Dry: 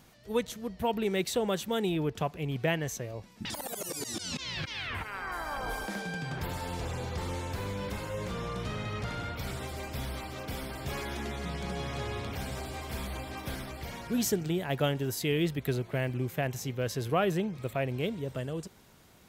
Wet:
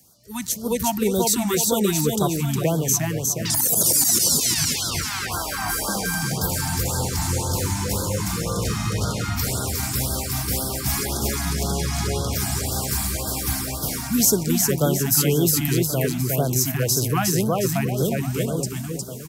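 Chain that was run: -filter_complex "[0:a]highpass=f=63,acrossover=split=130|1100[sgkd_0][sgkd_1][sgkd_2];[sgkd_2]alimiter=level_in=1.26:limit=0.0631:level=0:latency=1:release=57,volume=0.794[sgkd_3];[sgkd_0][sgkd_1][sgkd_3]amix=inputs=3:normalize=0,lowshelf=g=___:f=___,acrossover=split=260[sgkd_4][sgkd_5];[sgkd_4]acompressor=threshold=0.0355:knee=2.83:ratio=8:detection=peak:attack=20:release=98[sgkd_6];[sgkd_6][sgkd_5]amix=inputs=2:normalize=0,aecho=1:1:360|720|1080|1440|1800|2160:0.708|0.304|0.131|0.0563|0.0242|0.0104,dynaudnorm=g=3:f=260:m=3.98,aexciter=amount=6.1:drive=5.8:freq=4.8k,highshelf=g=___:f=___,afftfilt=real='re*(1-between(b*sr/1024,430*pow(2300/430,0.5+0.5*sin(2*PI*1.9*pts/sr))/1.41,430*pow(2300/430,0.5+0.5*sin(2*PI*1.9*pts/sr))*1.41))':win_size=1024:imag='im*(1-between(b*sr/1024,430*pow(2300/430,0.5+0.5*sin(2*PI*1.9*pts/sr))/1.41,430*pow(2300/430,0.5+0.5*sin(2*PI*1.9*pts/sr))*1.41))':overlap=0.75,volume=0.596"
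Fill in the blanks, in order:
4.5, 160, -5, 5.9k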